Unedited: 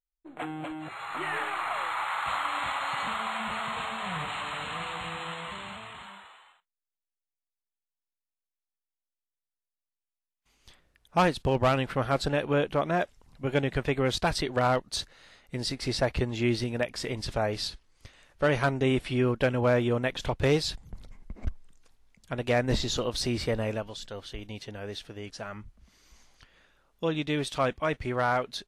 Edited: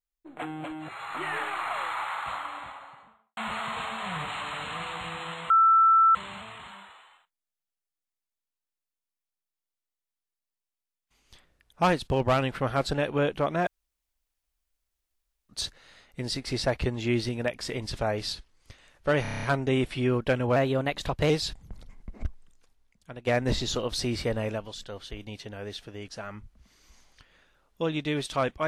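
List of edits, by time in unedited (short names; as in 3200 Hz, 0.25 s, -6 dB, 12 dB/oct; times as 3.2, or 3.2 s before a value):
1.82–3.37 studio fade out
5.5 add tone 1330 Hz -15.5 dBFS 0.65 s
13.02–14.84 room tone
18.57 stutter 0.03 s, 8 plays
19.7–20.52 speed 111%
21.44–22.49 fade out, to -12 dB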